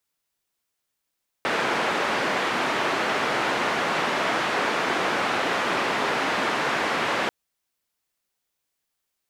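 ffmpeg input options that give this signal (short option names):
-f lavfi -i "anoisesrc=c=white:d=5.84:r=44100:seed=1,highpass=f=230,lowpass=f=1700,volume=-8.4dB"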